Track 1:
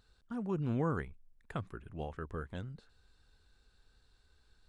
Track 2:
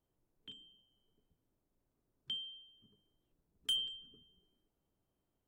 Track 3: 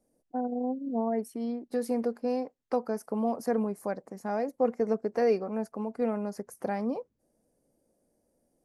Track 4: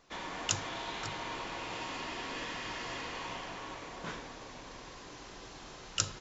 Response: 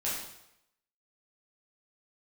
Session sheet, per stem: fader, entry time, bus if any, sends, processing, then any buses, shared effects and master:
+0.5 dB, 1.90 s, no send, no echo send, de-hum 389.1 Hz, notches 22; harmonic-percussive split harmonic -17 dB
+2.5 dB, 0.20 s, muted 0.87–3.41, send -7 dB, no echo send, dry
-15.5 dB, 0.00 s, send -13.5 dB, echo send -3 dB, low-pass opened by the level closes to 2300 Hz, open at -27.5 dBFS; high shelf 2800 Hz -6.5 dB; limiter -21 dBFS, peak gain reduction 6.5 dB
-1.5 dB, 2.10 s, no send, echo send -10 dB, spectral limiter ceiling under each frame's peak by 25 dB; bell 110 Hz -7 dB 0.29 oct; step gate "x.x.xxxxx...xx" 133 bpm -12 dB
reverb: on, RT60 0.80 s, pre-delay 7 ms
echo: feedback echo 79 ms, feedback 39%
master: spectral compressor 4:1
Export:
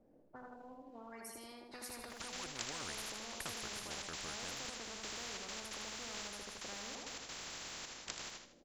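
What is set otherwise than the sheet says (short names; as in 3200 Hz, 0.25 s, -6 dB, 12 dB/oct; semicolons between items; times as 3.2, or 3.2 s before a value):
stem 2: muted; stem 4 -1.5 dB -> -11.5 dB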